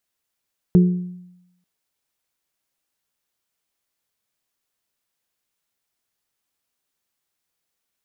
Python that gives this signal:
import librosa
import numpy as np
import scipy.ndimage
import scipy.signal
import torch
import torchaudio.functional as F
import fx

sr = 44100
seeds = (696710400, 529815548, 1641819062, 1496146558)

y = fx.strike_glass(sr, length_s=0.89, level_db=-7.5, body='bell', hz=179.0, decay_s=0.88, tilt_db=9.0, modes=3)